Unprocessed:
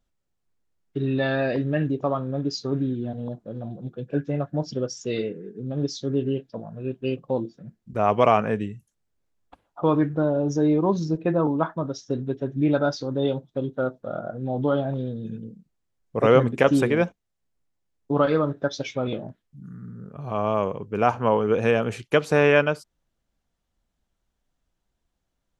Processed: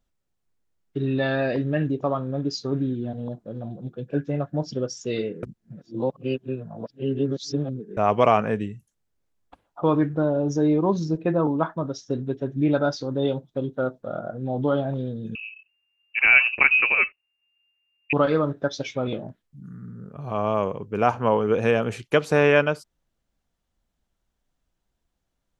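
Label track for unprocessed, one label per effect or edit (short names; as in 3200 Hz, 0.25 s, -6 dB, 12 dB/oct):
5.430000	7.970000	reverse
15.350000	18.130000	inverted band carrier 2800 Hz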